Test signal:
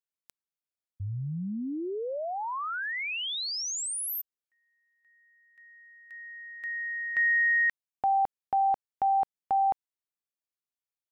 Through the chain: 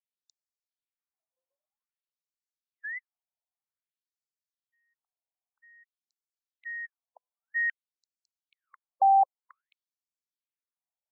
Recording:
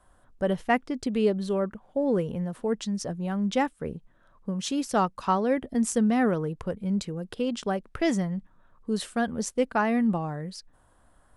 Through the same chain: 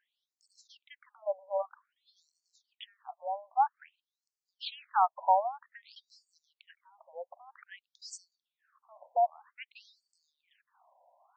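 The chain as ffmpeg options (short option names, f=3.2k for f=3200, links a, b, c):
-af "equalizer=f=720:w=2:g=9,afftfilt=real='re*between(b*sr/1024,710*pow(6100/710,0.5+0.5*sin(2*PI*0.52*pts/sr))/1.41,710*pow(6100/710,0.5+0.5*sin(2*PI*0.52*pts/sr))*1.41)':imag='im*between(b*sr/1024,710*pow(6100/710,0.5+0.5*sin(2*PI*0.52*pts/sr))/1.41,710*pow(6100/710,0.5+0.5*sin(2*PI*0.52*pts/sr))*1.41)':win_size=1024:overlap=0.75,volume=-3dB"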